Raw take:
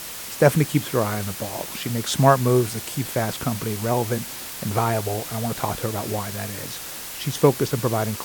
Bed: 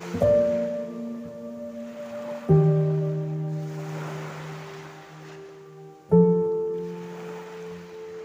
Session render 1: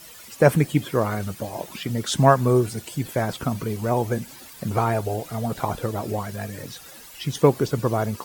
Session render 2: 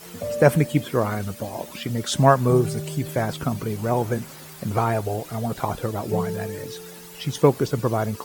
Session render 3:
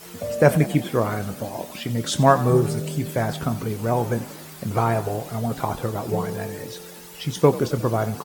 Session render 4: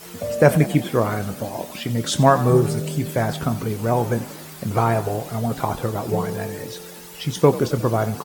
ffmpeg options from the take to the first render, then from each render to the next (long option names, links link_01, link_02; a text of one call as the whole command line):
ffmpeg -i in.wav -af "afftdn=noise_reduction=13:noise_floor=-35" out.wav
ffmpeg -i in.wav -i bed.wav -filter_complex "[1:a]volume=-9.5dB[link_01];[0:a][link_01]amix=inputs=2:normalize=0" out.wav
ffmpeg -i in.wav -filter_complex "[0:a]asplit=2[link_01][link_02];[link_02]adelay=26,volume=-13dB[link_03];[link_01][link_03]amix=inputs=2:normalize=0,asplit=6[link_04][link_05][link_06][link_07][link_08][link_09];[link_05]adelay=90,afreqshift=42,volume=-16.5dB[link_10];[link_06]adelay=180,afreqshift=84,volume=-21.4dB[link_11];[link_07]adelay=270,afreqshift=126,volume=-26.3dB[link_12];[link_08]adelay=360,afreqshift=168,volume=-31.1dB[link_13];[link_09]adelay=450,afreqshift=210,volume=-36dB[link_14];[link_04][link_10][link_11][link_12][link_13][link_14]amix=inputs=6:normalize=0" out.wav
ffmpeg -i in.wav -af "volume=2dB,alimiter=limit=-2dB:level=0:latency=1" out.wav